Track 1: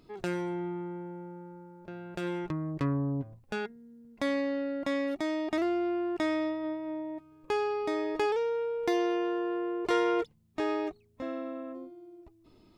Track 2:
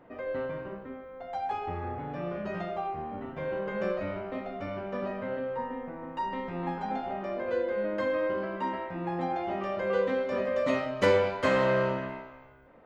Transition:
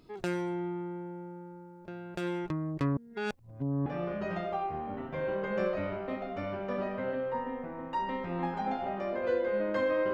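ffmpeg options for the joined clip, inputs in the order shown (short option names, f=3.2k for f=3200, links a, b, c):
-filter_complex "[0:a]apad=whole_dur=10.13,atrim=end=10.13,asplit=2[a][b];[a]atrim=end=2.972[c];[b]atrim=start=2.968:end=3.862,asetpts=PTS-STARTPTS,areverse[d];[1:a]atrim=start=2.098:end=8.37[e];[c][d]acrossfade=d=0.004:c1=hsin:c2=hsin[f];[f][e]acrossfade=d=0.004:c1=hsin:c2=hsin"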